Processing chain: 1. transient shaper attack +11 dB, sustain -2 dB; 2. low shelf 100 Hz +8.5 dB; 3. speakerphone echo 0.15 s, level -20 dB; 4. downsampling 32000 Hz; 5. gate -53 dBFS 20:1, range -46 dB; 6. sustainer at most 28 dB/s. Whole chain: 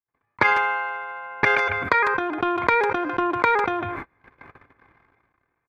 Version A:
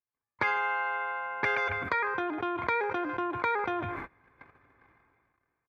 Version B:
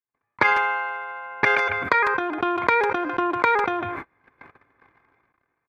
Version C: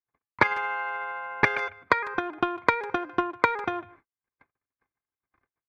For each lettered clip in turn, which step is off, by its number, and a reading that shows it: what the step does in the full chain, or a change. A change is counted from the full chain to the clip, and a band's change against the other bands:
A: 1, momentary loudness spread change -5 LU; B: 2, 125 Hz band -3.5 dB; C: 6, crest factor change +5.5 dB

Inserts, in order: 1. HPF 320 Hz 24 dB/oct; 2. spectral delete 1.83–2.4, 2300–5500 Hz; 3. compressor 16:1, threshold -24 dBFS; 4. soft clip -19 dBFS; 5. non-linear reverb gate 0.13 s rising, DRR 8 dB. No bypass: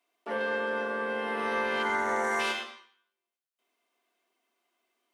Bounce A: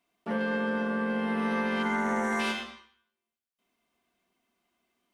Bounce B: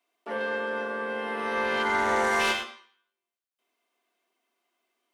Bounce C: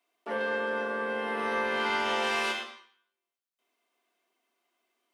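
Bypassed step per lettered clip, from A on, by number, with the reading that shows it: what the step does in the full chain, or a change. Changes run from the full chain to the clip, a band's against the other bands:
1, 250 Hz band +12.5 dB; 3, mean gain reduction 2.0 dB; 2, 4 kHz band +3.5 dB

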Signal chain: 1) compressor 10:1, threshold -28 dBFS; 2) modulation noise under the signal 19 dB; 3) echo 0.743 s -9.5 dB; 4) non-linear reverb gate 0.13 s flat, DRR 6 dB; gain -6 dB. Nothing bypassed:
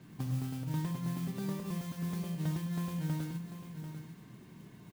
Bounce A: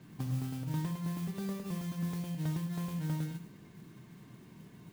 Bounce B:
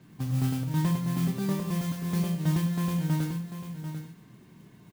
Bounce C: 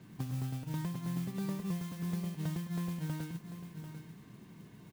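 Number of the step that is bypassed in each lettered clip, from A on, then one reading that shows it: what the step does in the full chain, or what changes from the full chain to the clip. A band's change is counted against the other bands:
3, echo-to-direct -4.0 dB to -6.0 dB; 1, mean gain reduction 4.5 dB; 4, echo-to-direct -4.0 dB to -9.5 dB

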